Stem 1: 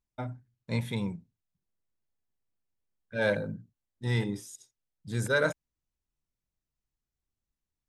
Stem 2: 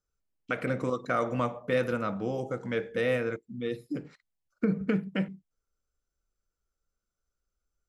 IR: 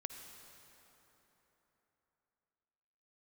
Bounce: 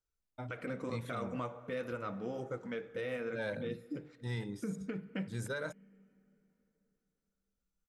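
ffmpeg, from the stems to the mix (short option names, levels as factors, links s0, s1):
-filter_complex "[0:a]adelay=200,volume=0.422[s0];[1:a]flanger=delay=2:depth=2.6:regen=-52:speed=2:shape=sinusoidal,volume=0.562,asplit=2[s1][s2];[s2]volume=0.355[s3];[2:a]atrim=start_sample=2205[s4];[s3][s4]afir=irnorm=-1:irlink=0[s5];[s0][s1][s5]amix=inputs=3:normalize=0,alimiter=level_in=1.68:limit=0.0631:level=0:latency=1:release=194,volume=0.596"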